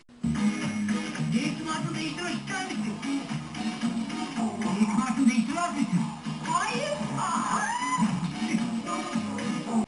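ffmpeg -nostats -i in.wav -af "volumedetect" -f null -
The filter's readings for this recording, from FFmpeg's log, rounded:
mean_volume: -28.4 dB
max_volume: -11.4 dB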